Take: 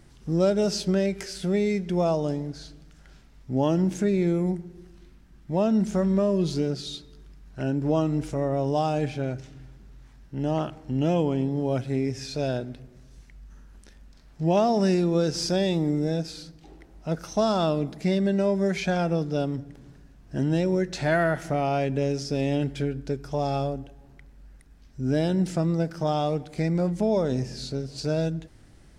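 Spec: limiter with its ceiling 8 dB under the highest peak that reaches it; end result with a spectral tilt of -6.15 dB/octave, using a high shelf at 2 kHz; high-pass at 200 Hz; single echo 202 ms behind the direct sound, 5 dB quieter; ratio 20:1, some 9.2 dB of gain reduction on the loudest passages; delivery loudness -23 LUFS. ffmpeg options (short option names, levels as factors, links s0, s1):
-af "highpass=200,highshelf=f=2000:g=-6.5,acompressor=threshold=0.0447:ratio=20,alimiter=level_in=1.12:limit=0.0631:level=0:latency=1,volume=0.891,aecho=1:1:202:0.562,volume=3.76"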